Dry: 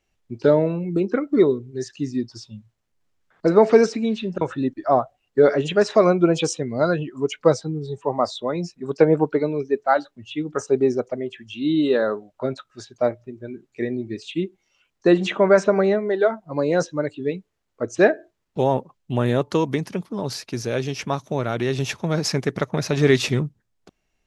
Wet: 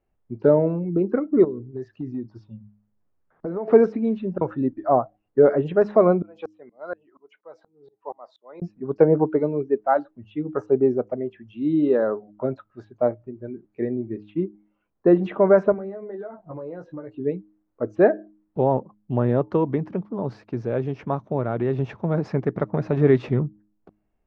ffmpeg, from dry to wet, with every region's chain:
ffmpeg -i in.wav -filter_complex "[0:a]asettb=1/sr,asplit=3[link_01][link_02][link_03];[link_01]atrim=end=1.444[link_04];[link_02]atrim=start=1.44:end=3.68,asetpts=PTS-STARTPTS,afade=type=in:duration=0.004:curve=qsin,afade=type=out:start_time=2.236:duration=0.004:curve=qsin,equalizer=frequency=7800:width_type=o:width=0.71:gain=-5,acompressor=threshold=-26dB:ratio=5:attack=3.2:release=140:knee=1:detection=peak[link_05];[link_03]atrim=start=3.676[link_06];[link_04][link_05]acrossfade=duration=0.004:curve1=hsin:curve2=qsin[link_07];[link_07][link_06]acrossfade=duration=0.004:curve1=qsin:curve2=hsin,asettb=1/sr,asplit=3[link_08][link_09][link_10];[link_08]atrim=end=6.224[link_11];[link_09]atrim=start=6.22:end=8.62,asetpts=PTS-STARTPTS,afade=type=in:duration=0.004:curve=qsin,afade=type=out:start_time=2.396:duration=0.004:curve=qsin,highpass=650,aeval=exprs='val(0)*pow(10,-32*if(lt(mod(-4.2*n/s,1),2*abs(-4.2)/1000),1-mod(-4.2*n/s,1)/(2*abs(-4.2)/1000),(mod(-4.2*n/s,1)-2*abs(-4.2)/1000)/(1-2*abs(-4.2)/1000))/20)':channel_layout=same[link_12];[link_10]atrim=start=8.616[link_13];[link_11][link_12]acrossfade=duration=0.004:curve1=hsin:curve2=qsin[link_14];[link_14][link_13]acrossfade=duration=0.004:curve1=qsin:curve2=hsin,asettb=1/sr,asplit=3[link_15][link_16][link_17];[link_15]atrim=end=14.104[link_18];[link_16]atrim=start=14.1:end=15.13,asetpts=PTS-STARTPTS,afade=type=in:duration=0.004:curve=qsin,afade=type=out:start_time=1.026:duration=0.004:curve=qsin,equalizer=frequency=7200:width=0.47:gain=-5.5,adynamicsmooth=sensitivity=6:basefreq=4200[link_19];[link_17]atrim=start=15.126[link_20];[link_18][link_19]acrossfade=duration=0.004:curve1=hsin:curve2=qsin[link_21];[link_21][link_20]acrossfade=duration=0.004:curve1=qsin:curve2=hsin,asettb=1/sr,asplit=3[link_22][link_23][link_24];[link_22]atrim=end=15.724[link_25];[link_23]atrim=start=15.72:end=17.15,asetpts=PTS-STARTPTS,afade=type=in:duration=0.004:curve=qsin,afade=type=out:start_time=1.426:duration=0.004:curve=qsin,acompressor=threshold=-30dB:ratio=16:attack=3.2:release=140:knee=1:detection=peak,asplit=2[link_26][link_27];[link_27]adelay=16,volume=-6dB[link_28];[link_26][link_28]amix=inputs=2:normalize=0,atrim=end_sample=63063[link_29];[link_24]atrim=start=17.146[link_30];[link_25][link_29]acrossfade=duration=0.004:curve1=hsin:curve2=qsin[link_31];[link_31][link_30]acrossfade=duration=0.004:curve1=qsin:curve2=hsin,lowpass=1100,bandreject=frequency=104:width_type=h:width=4,bandreject=frequency=208:width_type=h:width=4,bandreject=frequency=312:width_type=h:width=4" out.wav

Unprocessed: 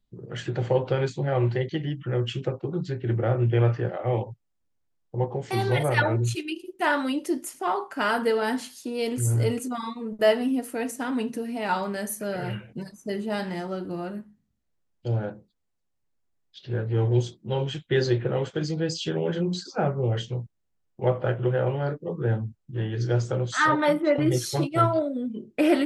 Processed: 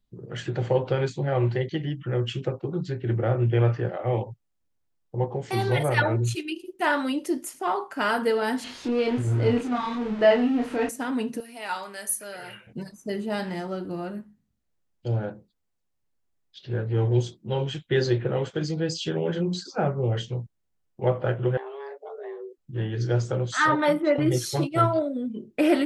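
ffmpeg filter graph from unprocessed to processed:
ffmpeg -i in.wav -filter_complex "[0:a]asettb=1/sr,asplit=3[link_01][link_02][link_03];[link_01]atrim=end=8.644[link_04];[link_02]atrim=start=8.64:end=10.89,asetpts=PTS-STARTPTS,afade=type=in:duration=0.004:curve=qsin,afade=type=out:start_time=2.246:duration=0.004:curve=qsin,aeval=exprs='val(0)+0.5*0.0266*sgn(val(0))':channel_layout=same,lowpass=3200,asplit=2[link_05][link_06];[link_06]adelay=29,volume=-3.5dB[link_07];[link_05][link_07]amix=inputs=2:normalize=0,atrim=end_sample=99225[link_08];[link_03]atrim=start=10.886[link_09];[link_04][link_08]acrossfade=duration=0.004:curve1=hsin:curve2=qsin[link_10];[link_10][link_09]acrossfade=duration=0.004:curve1=qsin:curve2=hsin,asettb=1/sr,asplit=3[link_11][link_12][link_13];[link_11]atrim=end=11.404[link_14];[link_12]atrim=start=11.4:end=12.67,asetpts=PTS-STARTPTS,afade=type=in:duration=0.004:curve=qsin,afade=type=out:start_time=1.266:duration=0.004:curve=qsin,highpass=frequency=1400:poles=1,equalizer=frequency=10000:width=4.9:gain=10[link_15];[link_13]atrim=start=12.666[link_16];[link_14][link_15]acrossfade=duration=0.004:curve1=hsin:curve2=qsin[link_17];[link_17][link_16]acrossfade=duration=0.004:curve1=qsin:curve2=hsin,asettb=1/sr,asplit=3[link_18][link_19][link_20];[link_18]atrim=end=21.574[link_21];[link_19]atrim=start=21.57:end=22.58,asetpts=PTS-STARTPTS,afade=type=in:duration=0.004:curve=qsin,afade=type=out:start_time=1.006:duration=0.004:curve=qsin,equalizer=frequency=460:width=1.7:gain=-10,acompressor=threshold=-35dB:ratio=5:attack=3.2:release=140:knee=1:detection=peak,afreqshift=270[link_22];[link_20]atrim=start=22.576[link_23];[link_21][link_22]acrossfade=duration=0.004:curve1=hsin:curve2=qsin[link_24];[link_24][link_23]acrossfade=duration=0.004:curve1=qsin:curve2=hsin" out.wav

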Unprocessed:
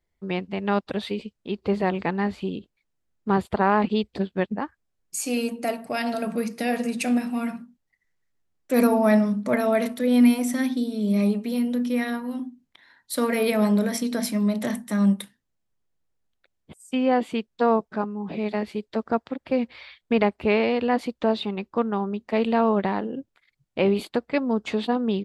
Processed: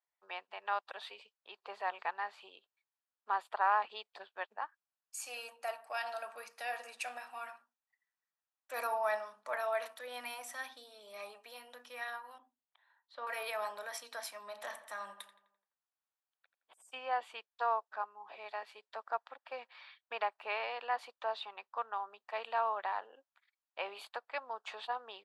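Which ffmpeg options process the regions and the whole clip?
ffmpeg -i in.wav -filter_complex "[0:a]asettb=1/sr,asplit=3[link_01][link_02][link_03];[link_01]atrim=end=12.384[link_04];[link_02]atrim=start=12.38:end=13.27,asetpts=PTS-STARTPTS,afade=type=in:duration=0.004:curve=qsin,afade=type=out:start_time=0.886:duration=0.004:curve=qsin,lowpass=frequency=3400:width=0.5412,lowpass=frequency=3400:width=1.3066,equalizer=frequency=2000:width_type=o:width=1.9:gain=-9[link_05];[link_03]atrim=start=13.266[link_06];[link_04][link_05]acrossfade=duration=0.004:curve1=hsin:curve2=qsin[link_07];[link_07][link_06]acrossfade=duration=0.004:curve1=qsin:curve2=hsin,asettb=1/sr,asplit=3[link_08][link_09][link_10];[link_08]atrim=end=14.404[link_11];[link_09]atrim=start=14.4:end=16.99,asetpts=PTS-STARTPTS,afade=type=in:duration=0.004:curve=qsin,afade=type=out:start_time=2.586:duration=0.004:curve=qsin,equalizer=frequency=240:width=1.2:gain=3,asplit=2[link_12][link_13];[link_13]adelay=85,lowpass=frequency=2700:poles=1,volume=-11.5dB,asplit=2[link_14][link_15];[link_15]adelay=85,lowpass=frequency=2700:poles=1,volume=0.55,asplit=2[link_16][link_17];[link_17]adelay=85,lowpass=frequency=2700:poles=1,volume=0.55,asplit=2[link_18][link_19];[link_19]adelay=85,lowpass=frequency=2700:poles=1,volume=0.55,asplit=2[link_20][link_21];[link_21]adelay=85,lowpass=frequency=2700:poles=1,volume=0.55,asplit=2[link_22][link_23];[link_23]adelay=85,lowpass=frequency=2700:poles=1,volume=0.55[link_24];[link_12][link_14][link_16][link_18][link_20][link_22][link_24]amix=inputs=7:normalize=0,atrim=end_sample=114219[link_25];[link_10]atrim=start=16.986[link_26];[link_11][link_25]acrossfade=duration=0.004:curve1=hsin:curve2=qsin[link_27];[link_27][link_26]acrossfade=duration=0.004:curve1=qsin:curve2=hsin,highpass=frequency=820:width=0.5412,highpass=frequency=820:width=1.3066,highshelf=frequency=2400:gain=-11,bandreject=frequency=2100:width=8.8,volume=-3.5dB" out.wav

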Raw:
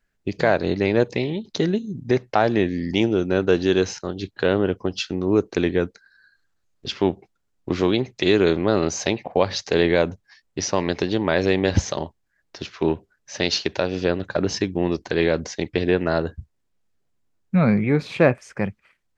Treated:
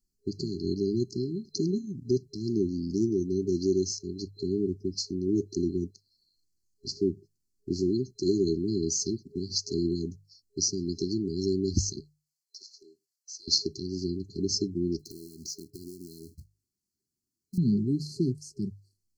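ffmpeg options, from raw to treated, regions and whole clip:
ffmpeg -i in.wav -filter_complex "[0:a]asettb=1/sr,asplit=3[link_01][link_02][link_03];[link_01]atrim=end=12.004[link_04];[link_02]atrim=start=12:end=13.48,asetpts=PTS-STARTPTS,afade=type=in:duration=0.004:curve=qsin,afade=type=out:start_time=1.476:duration=0.004:curve=qsin,highpass=1400,acompressor=threshold=-41dB:ratio=2:attack=3.2:release=140:knee=1:detection=peak[link_05];[link_03]atrim=start=13.476[link_06];[link_04][link_05]acrossfade=duration=0.004:curve1=hsin:curve2=qsin[link_07];[link_07][link_06]acrossfade=duration=0.004:curve1=qsin:curve2=hsin,asettb=1/sr,asplit=3[link_08][link_09][link_10];[link_08]atrim=end=14.994[link_11];[link_09]atrim=start=14.99:end=17.58,asetpts=PTS-STARTPTS,afade=type=in:duration=0.004:curve=qsin,afade=type=out:start_time=2.586:duration=0.004:curve=qsin,highpass=frequency=120:poles=1,acompressor=threshold=-31dB:ratio=8:attack=3.2:release=140:knee=1:detection=peak,acrusher=bits=4:mode=log:mix=0:aa=0.000001[link_12];[link_10]atrim=start=17.576[link_13];[link_11][link_12]acrossfade=duration=0.004:curve1=hsin:curve2=qsin[link_14];[link_14][link_13]acrossfade=duration=0.004:curve1=qsin:curve2=hsin,bandreject=frequency=50:width_type=h:width=6,bandreject=frequency=100:width_type=h:width=6,bandreject=frequency=150:width_type=h:width=6,afftfilt=real='re*(1-between(b*sr/4096,410,4100))':imag='im*(1-between(b*sr/4096,410,4100))':win_size=4096:overlap=0.75,highshelf=frequency=2300:gain=7.5,volume=-6dB" out.wav

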